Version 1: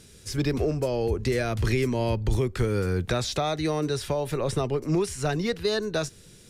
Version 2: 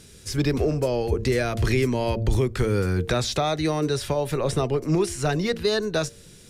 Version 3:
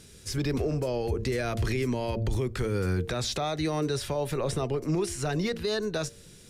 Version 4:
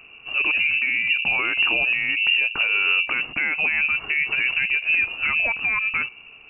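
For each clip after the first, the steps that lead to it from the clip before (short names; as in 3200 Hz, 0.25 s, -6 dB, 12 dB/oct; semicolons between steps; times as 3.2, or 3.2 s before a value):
de-hum 114.6 Hz, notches 6; gain +3 dB
limiter -17 dBFS, peak gain reduction 6.5 dB; gain -3 dB
inverted band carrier 2800 Hz; gain +6.5 dB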